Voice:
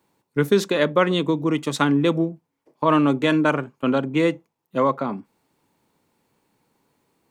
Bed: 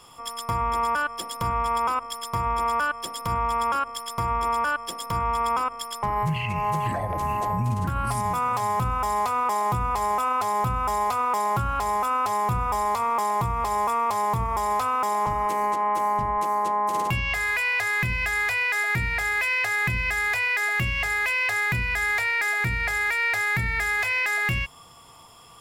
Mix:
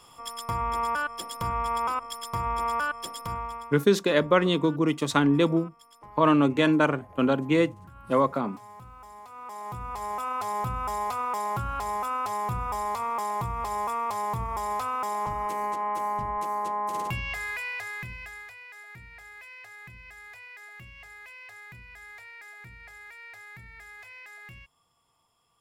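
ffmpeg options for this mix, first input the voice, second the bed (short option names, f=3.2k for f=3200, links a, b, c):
-filter_complex "[0:a]adelay=3350,volume=-2.5dB[a];[1:a]volume=13dB,afade=t=out:st=3.08:d=0.65:silence=0.11885,afade=t=in:st=9.28:d=1.23:silence=0.149624,afade=t=out:st=17.03:d=1.51:silence=0.149624[b];[a][b]amix=inputs=2:normalize=0"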